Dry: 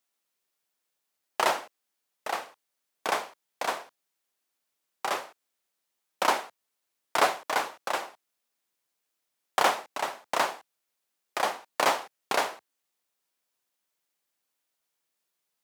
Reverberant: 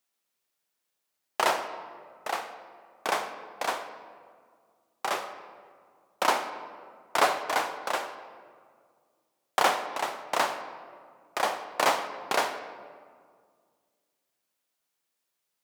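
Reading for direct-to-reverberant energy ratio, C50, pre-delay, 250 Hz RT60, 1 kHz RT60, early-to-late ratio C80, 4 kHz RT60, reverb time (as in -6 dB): 9.0 dB, 9.5 dB, 37 ms, 2.4 s, 1.9 s, 11.0 dB, 1.0 s, 1.9 s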